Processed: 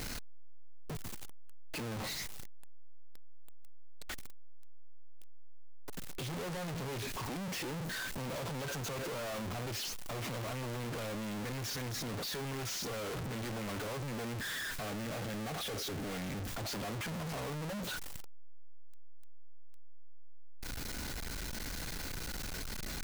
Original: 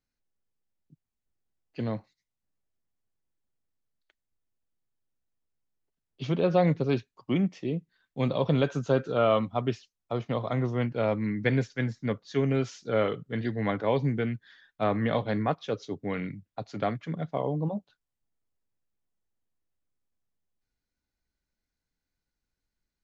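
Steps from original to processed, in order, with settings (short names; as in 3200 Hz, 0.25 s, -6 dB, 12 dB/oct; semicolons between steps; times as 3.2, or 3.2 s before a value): infinite clipping; 14.83–16.49 notch 1000 Hz, Q 6.9; gain -7.5 dB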